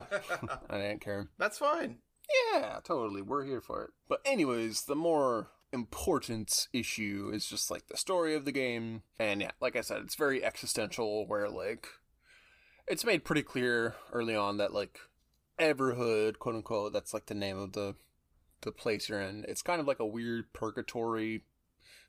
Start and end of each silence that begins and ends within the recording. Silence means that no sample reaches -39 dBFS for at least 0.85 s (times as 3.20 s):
11.88–12.88 s